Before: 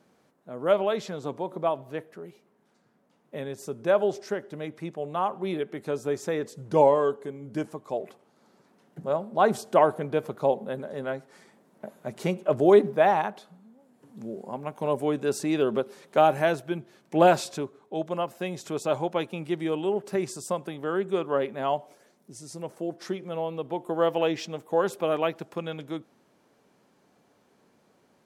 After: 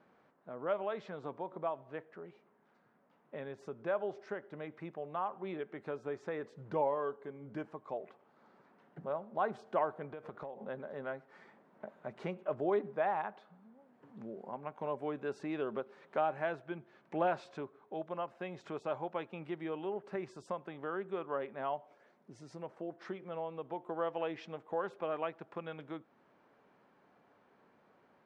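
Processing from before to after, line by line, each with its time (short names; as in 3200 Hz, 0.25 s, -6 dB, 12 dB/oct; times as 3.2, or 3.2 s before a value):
10.07–10.64 compressor 12:1, threshold -32 dBFS
whole clip: LPF 1400 Hz 12 dB/oct; tilt shelf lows -7.5 dB; compressor 1.5:1, threshold -50 dBFS; gain +1 dB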